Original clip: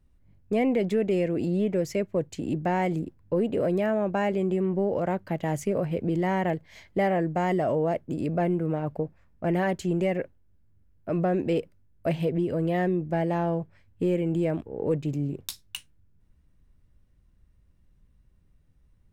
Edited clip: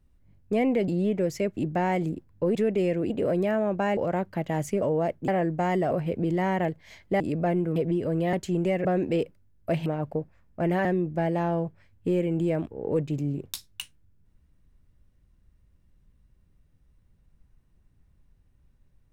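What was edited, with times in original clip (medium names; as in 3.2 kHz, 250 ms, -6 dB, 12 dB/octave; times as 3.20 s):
0.88–1.43 s: move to 3.45 s
2.12–2.47 s: delete
4.32–4.91 s: delete
5.76–7.05 s: swap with 7.68–8.14 s
8.70–9.69 s: swap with 12.23–12.80 s
10.21–11.22 s: delete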